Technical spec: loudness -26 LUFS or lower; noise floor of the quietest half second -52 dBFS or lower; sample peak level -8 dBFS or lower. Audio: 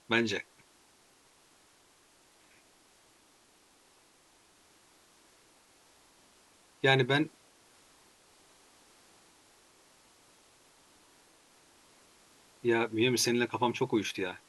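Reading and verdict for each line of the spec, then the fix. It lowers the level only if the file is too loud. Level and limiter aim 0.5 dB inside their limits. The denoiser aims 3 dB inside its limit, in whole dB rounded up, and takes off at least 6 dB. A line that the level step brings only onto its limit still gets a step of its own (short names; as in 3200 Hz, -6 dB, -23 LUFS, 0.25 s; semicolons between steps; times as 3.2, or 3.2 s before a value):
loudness -29.5 LUFS: OK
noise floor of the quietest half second -64 dBFS: OK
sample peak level -9.5 dBFS: OK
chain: none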